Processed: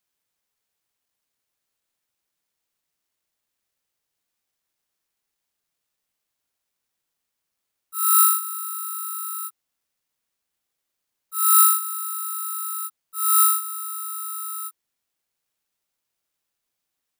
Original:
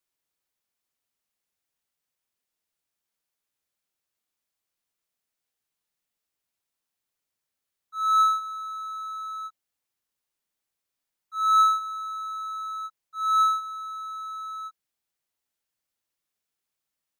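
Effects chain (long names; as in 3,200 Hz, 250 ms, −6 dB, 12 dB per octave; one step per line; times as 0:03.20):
bad sample-rate conversion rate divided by 4×, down none, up zero stuff
level −2 dB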